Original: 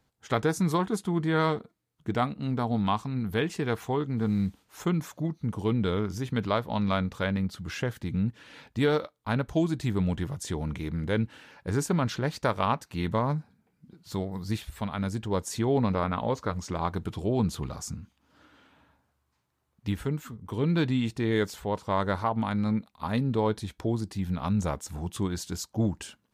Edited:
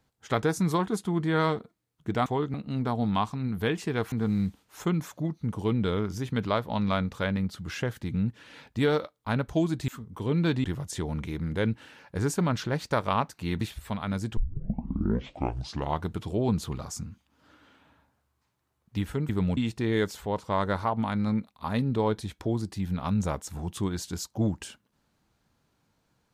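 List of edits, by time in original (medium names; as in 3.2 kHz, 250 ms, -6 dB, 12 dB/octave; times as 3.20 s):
3.84–4.12 s: move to 2.26 s
9.88–10.16 s: swap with 20.20–20.96 s
13.13–14.52 s: delete
15.28 s: tape start 1.74 s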